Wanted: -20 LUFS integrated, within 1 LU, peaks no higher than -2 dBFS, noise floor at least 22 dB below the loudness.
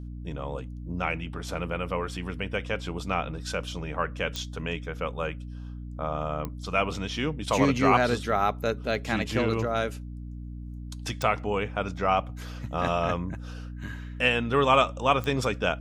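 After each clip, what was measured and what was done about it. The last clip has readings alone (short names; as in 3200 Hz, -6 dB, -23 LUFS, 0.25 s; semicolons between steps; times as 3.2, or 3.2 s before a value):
clicks 4; hum 60 Hz; harmonics up to 300 Hz; hum level -35 dBFS; loudness -28.0 LUFS; peak -7.5 dBFS; loudness target -20.0 LUFS
-> de-click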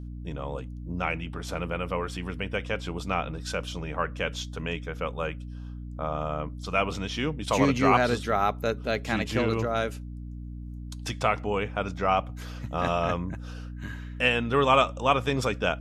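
clicks 0; hum 60 Hz; harmonics up to 300 Hz; hum level -35 dBFS
-> de-hum 60 Hz, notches 5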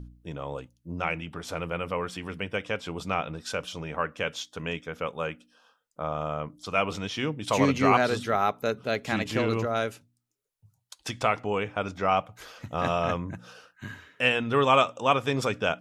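hum none; loudness -28.0 LUFS; peak -7.0 dBFS; loudness target -20.0 LUFS
-> gain +8 dB; limiter -2 dBFS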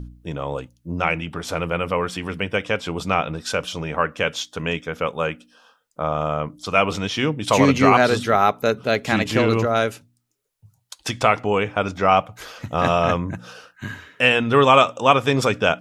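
loudness -20.5 LUFS; peak -2.0 dBFS; noise floor -65 dBFS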